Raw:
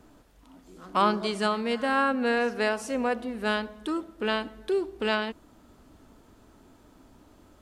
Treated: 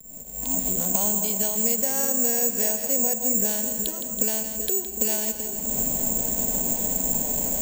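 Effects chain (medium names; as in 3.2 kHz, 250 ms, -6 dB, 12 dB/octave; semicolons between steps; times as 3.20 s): recorder AGC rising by 51 dB/s; low-pass 3.1 kHz 12 dB/octave; hysteresis with a dead band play -45 dBFS; static phaser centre 330 Hz, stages 6; on a send: two-band feedback delay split 580 Hz, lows 379 ms, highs 164 ms, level -9.5 dB; on the sum: careless resampling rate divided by 6×, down none, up zero stuff; three bands compressed up and down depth 40%; trim -4 dB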